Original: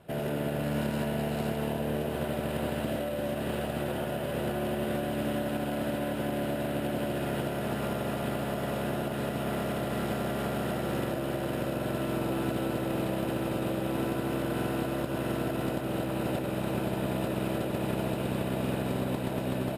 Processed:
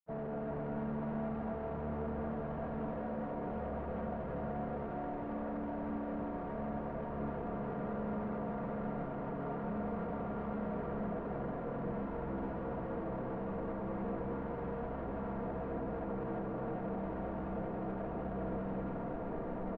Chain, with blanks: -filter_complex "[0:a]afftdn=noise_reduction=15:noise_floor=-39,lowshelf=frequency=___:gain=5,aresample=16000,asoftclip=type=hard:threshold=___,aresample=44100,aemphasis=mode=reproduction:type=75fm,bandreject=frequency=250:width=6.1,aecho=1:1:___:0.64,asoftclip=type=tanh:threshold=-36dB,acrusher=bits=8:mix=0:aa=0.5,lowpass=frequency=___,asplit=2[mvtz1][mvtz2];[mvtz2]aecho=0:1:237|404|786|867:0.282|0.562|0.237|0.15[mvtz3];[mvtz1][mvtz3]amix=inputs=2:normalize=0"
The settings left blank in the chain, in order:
120, -36dB, 4.3, 1300